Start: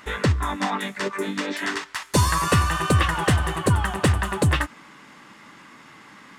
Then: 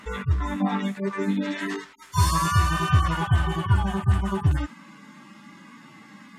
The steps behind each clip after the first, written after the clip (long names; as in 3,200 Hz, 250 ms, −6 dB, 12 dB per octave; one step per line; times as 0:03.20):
harmonic-percussive split with one part muted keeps harmonic
parametric band 200 Hz +8 dB 0.76 octaves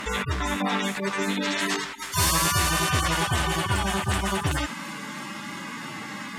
delay with a high-pass on its return 328 ms, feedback 84%, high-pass 3,600 Hz, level −23 dB
every bin compressed towards the loudest bin 2 to 1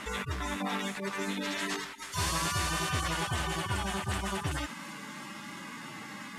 variable-slope delta modulation 64 kbit/s
level −7.5 dB